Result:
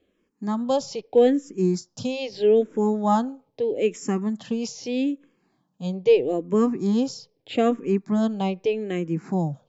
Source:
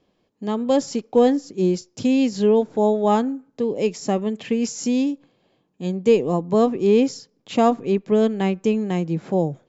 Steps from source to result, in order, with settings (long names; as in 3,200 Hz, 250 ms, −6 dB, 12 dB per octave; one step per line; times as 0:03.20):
frequency shifter mixed with the dry sound −0.79 Hz